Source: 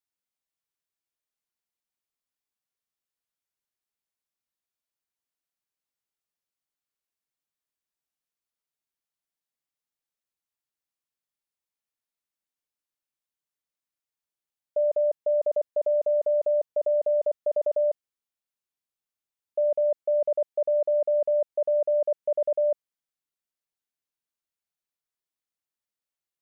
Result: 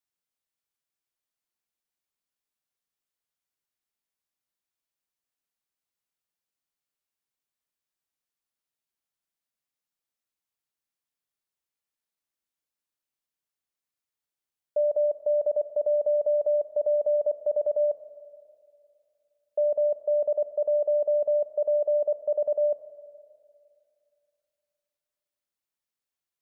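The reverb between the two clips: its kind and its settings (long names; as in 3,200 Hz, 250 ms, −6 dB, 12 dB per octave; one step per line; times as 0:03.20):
four-comb reverb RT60 2.5 s, combs from 28 ms, DRR 12 dB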